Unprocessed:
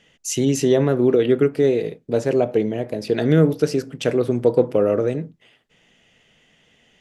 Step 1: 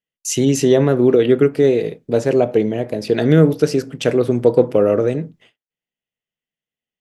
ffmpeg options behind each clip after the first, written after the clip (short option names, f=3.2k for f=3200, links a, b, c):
-af "agate=range=-38dB:threshold=-51dB:ratio=16:detection=peak,volume=3.5dB"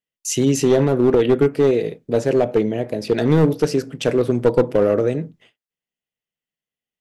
-af "aeval=exprs='clip(val(0),-1,0.299)':c=same,volume=-1.5dB"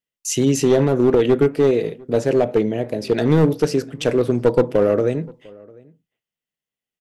-filter_complex "[0:a]asplit=2[a][b];[b]adelay=699.7,volume=-25dB,highshelf=f=4k:g=-15.7[c];[a][c]amix=inputs=2:normalize=0"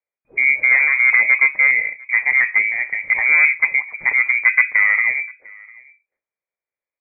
-af "lowpass=f=2.1k:t=q:w=0.5098,lowpass=f=2.1k:t=q:w=0.6013,lowpass=f=2.1k:t=q:w=0.9,lowpass=f=2.1k:t=q:w=2.563,afreqshift=-2500,volume=1dB"